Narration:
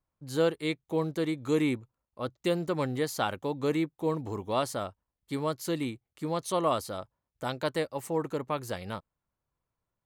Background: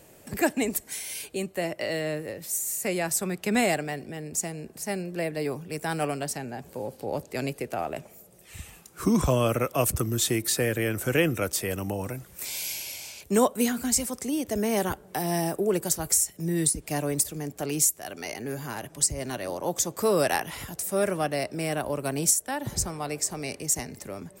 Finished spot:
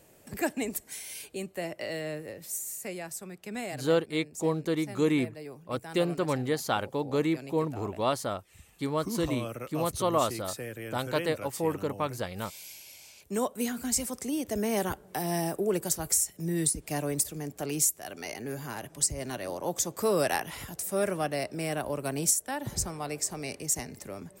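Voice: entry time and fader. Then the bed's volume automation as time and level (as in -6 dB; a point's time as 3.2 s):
3.50 s, +1.0 dB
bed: 2.55 s -5.5 dB
3.2 s -13 dB
12.82 s -13 dB
14.06 s -3 dB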